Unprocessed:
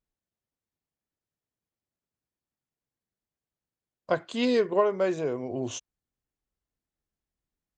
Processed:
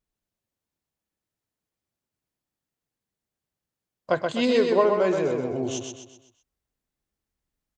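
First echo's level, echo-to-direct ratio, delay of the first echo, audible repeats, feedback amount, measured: −4.5 dB, −3.5 dB, 127 ms, 5, 43%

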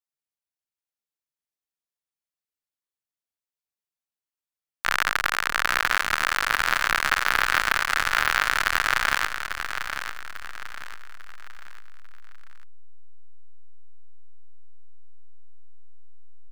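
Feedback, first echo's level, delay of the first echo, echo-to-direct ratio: 38%, −8.0 dB, 846 ms, −7.5 dB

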